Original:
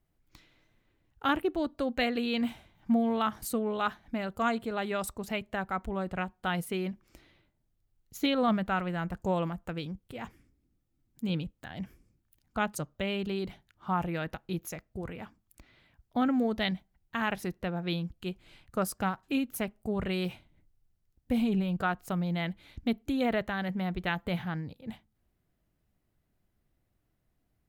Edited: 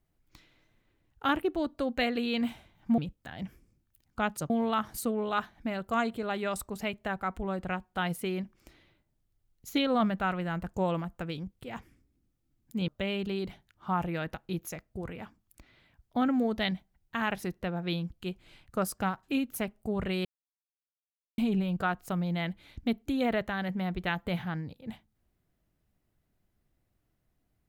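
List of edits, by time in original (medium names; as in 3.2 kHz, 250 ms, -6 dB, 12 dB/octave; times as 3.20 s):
11.36–12.88 s: move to 2.98 s
20.25–21.38 s: mute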